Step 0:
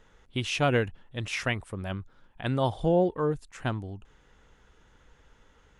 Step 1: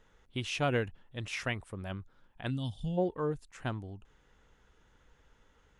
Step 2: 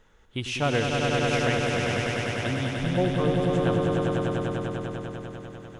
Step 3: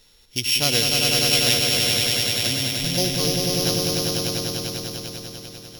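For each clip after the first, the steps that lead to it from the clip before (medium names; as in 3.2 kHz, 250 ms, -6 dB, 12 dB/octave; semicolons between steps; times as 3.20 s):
time-frequency box 2.50–2.98 s, 290–2600 Hz -18 dB; trim -5.5 dB
echo with a slow build-up 99 ms, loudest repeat 5, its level -4 dB; trim +4.5 dB
sorted samples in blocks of 8 samples; resonant high shelf 2.1 kHz +12 dB, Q 1.5; trim -1 dB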